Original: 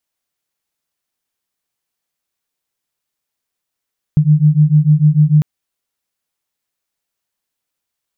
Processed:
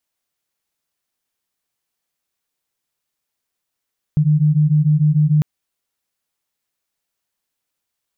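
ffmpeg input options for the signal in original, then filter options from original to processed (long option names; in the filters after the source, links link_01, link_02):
-f lavfi -i "aevalsrc='0.299*(sin(2*PI*148*t)+sin(2*PI*154.7*t))':duration=1.25:sample_rate=44100"
-af "alimiter=limit=-10dB:level=0:latency=1:release=18"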